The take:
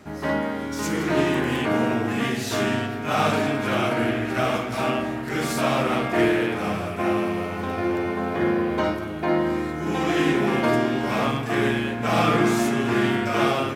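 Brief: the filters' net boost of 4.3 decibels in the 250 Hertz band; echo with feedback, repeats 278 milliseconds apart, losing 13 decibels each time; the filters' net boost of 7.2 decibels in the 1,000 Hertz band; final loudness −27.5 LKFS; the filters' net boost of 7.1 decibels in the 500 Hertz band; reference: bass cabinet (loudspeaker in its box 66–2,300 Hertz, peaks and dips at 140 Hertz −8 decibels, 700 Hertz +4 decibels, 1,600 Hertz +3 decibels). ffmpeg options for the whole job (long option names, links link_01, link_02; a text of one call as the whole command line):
ffmpeg -i in.wav -af "highpass=frequency=66:width=0.5412,highpass=frequency=66:width=1.3066,equalizer=frequency=140:width_type=q:width=4:gain=-8,equalizer=frequency=700:width_type=q:width=4:gain=4,equalizer=frequency=1600:width_type=q:width=4:gain=3,lowpass=frequency=2300:width=0.5412,lowpass=frequency=2300:width=1.3066,equalizer=frequency=250:width_type=o:gain=3.5,equalizer=frequency=500:width_type=o:gain=5.5,equalizer=frequency=1000:width_type=o:gain=5,aecho=1:1:278|556|834:0.224|0.0493|0.0108,volume=-9.5dB" out.wav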